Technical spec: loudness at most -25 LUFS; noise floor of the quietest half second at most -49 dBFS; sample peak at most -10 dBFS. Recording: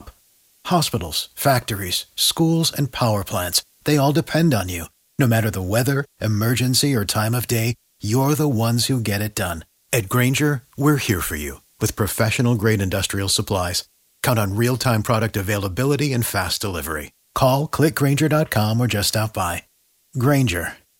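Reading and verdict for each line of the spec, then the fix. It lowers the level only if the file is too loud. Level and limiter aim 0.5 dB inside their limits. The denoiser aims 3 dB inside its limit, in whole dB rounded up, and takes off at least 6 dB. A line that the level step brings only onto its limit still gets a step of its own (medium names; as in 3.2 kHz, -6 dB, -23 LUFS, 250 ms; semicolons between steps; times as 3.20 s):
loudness -20.0 LUFS: fail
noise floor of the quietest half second -61 dBFS: pass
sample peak -3.5 dBFS: fail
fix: trim -5.5 dB; peak limiter -10.5 dBFS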